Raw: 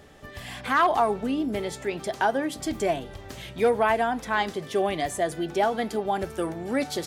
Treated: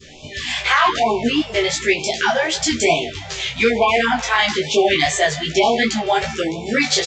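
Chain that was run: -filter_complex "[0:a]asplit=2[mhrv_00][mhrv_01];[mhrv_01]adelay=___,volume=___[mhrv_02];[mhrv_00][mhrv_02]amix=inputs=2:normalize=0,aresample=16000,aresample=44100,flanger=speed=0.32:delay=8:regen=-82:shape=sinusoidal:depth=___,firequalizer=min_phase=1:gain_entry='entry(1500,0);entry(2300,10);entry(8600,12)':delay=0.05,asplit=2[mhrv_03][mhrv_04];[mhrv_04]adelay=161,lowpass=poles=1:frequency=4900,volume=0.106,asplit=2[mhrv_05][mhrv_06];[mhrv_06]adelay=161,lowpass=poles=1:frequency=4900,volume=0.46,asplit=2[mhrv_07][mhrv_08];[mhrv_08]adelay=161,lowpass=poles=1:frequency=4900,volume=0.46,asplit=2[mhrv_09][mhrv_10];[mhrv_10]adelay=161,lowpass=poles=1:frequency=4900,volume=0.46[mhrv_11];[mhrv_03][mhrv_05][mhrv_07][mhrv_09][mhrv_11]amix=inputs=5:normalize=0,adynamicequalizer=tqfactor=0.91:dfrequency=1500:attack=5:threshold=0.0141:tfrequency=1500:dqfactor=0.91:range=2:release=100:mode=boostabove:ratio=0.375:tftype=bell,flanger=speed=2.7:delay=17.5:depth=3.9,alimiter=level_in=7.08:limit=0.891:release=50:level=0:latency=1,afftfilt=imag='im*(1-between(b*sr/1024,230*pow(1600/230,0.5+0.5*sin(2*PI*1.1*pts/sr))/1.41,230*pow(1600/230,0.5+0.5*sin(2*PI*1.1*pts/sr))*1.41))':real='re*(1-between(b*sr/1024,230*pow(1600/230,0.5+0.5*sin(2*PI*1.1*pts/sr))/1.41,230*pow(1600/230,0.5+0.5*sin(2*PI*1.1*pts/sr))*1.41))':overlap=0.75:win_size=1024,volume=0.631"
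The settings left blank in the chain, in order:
13, 0.794, 5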